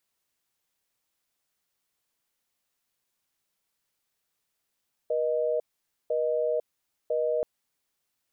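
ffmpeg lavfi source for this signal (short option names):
-f lavfi -i "aevalsrc='0.0473*(sin(2*PI*480*t)+sin(2*PI*620*t))*clip(min(mod(t,1),0.5-mod(t,1))/0.005,0,1)':d=2.33:s=44100"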